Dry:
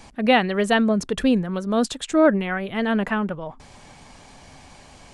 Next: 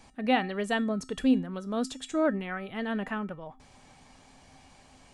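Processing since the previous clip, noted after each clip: resonator 260 Hz, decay 0.36 s, harmonics odd, mix 70%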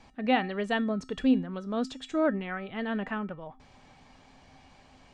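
LPF 4800 Hz 12 dB/oct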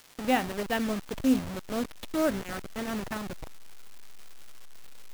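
level-crossing sampler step -30 dBFS; crackle 450/s -40 dBFS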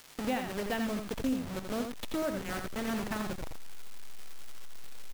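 compressor 3:1, threshold -33 dBFS, peak gain reduction 11 dB; on a send: echo 84 ms -6 dB; on the sum: gain +1 dB

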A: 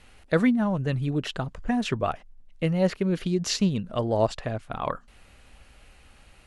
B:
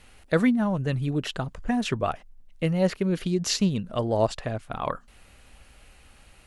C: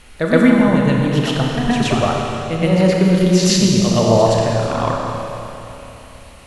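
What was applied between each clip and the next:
high shelf 9700 Hz +8 dB
reverse echo 0.12 s -6 dB; Schroeder reverb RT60 3.2 s, combs from 27 ms, DRR -0.5 dB; gain +7.5 dB

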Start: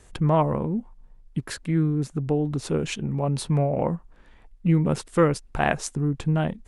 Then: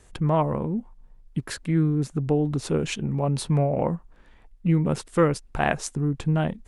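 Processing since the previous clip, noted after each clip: vocal rider 2 s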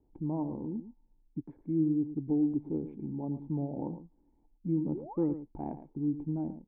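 painted sound rise, 4.94–5.27, 320–2100 Hz -28 dBFS; vocal tract filter u; echo 0.111 s -12 dB; gain -1.5 dB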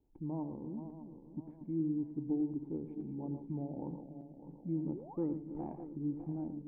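regenerating reverse delay 0.301 s, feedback 64%, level -9.5 dB; gain -6 dB

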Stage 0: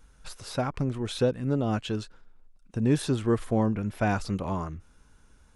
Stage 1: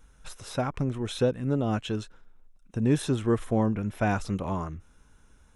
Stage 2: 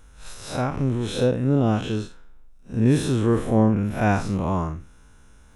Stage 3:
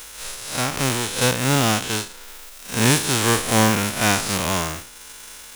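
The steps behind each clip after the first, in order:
notch 4600 Hz, Q 6
time blur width 0.114 s; de-esser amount 80%; gain +8 dB
spectral whitening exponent 0.3; mismatched tape noise reduction encoder only; gain +1 dB

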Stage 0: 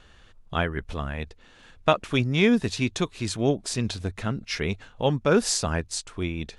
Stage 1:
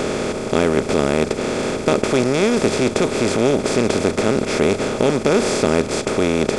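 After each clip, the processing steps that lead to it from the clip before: per-bin compression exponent 0.2; bell 370 Hz +7 dB 1.3 oct; gain -5.5 dB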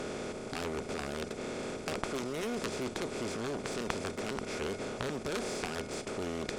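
resonator 720 Hz, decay 0.33 s, mix 70%; added harmonics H 3 -6 dB, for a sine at -10.5 dBFS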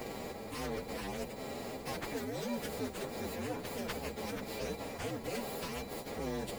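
inharmonic rescaling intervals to 128%; gain +1 dB

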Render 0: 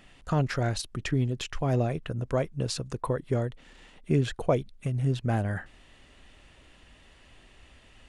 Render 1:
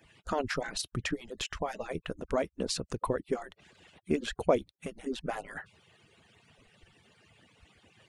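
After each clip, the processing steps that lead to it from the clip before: median-filter separation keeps percussive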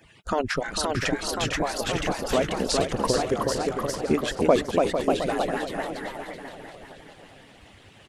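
on a send: feedback echo 0.451 s, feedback 53%, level -8.5 dB; on the sum: echoes that change speed 0.541 s, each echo +1 st, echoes 3; gain +6 dB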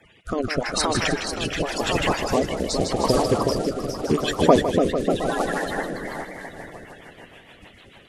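bin magnitudes rounded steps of 30 dB; thinning echo 0.155 s, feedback 48%, high-pass 600 Hz, level -6 dB; rotary speaker horn 0.85 Hz, later 6.7 Hz, at 5.75; gain +5 dB

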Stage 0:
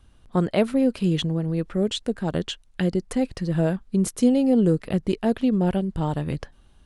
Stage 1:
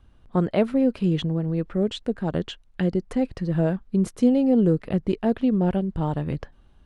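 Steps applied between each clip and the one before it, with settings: LPF 2200 Hz 6 dB/oct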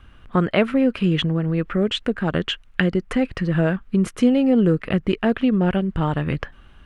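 in parallel at +2 dB: compressor, threshold -30 dBFS, peak gain reduction 15.5 dB; on the sum: band shelf 1900 Hz +9 dB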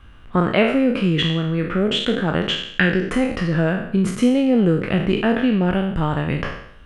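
spectral trails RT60 0.69 s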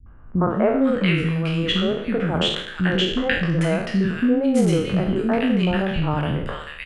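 three bands offset in time lows, mids, highs 60/500 ms, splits 300/1500 Hz

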